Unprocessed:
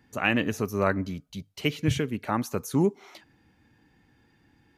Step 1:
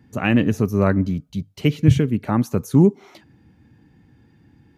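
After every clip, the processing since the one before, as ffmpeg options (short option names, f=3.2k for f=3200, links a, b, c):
-af "equalizer=f=130:w=0.35:g=12.5"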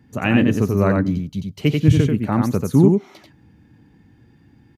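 -af "aecho=1:1:89:0.668"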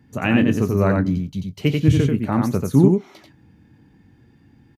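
-filter_complex "[0:a]asplit=2[a][b];[b]adelay=22,volume=-12dB[c];[a][c]amix=inputs=2:normalize=0,volume=-1dB"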